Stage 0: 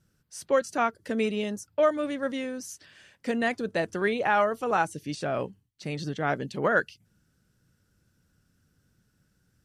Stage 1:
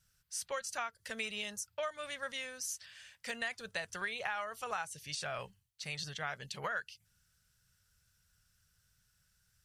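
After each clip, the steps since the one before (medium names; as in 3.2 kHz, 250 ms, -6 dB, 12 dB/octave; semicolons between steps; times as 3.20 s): amplifier tone stack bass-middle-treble 10-0-10; compression 6:1, threshold -38 dBFS, peak gain reduction 11.5 dB; trim +3.5 dB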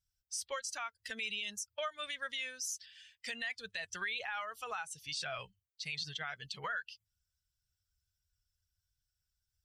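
expander on every frequency bin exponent 1.5; peaking EQ 3.4 kHz +11.5 dB 2.7 oct; peak limiter -28 dBFS, peak gain reduction 11 dB; trim -1 dB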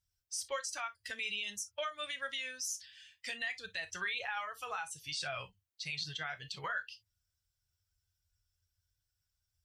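reverberation, pre-delay 3 ms, DRR 6.5 dB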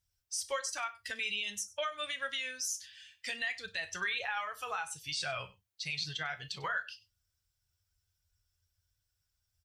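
delay 97 ms -20 dB; trim +2.5 dB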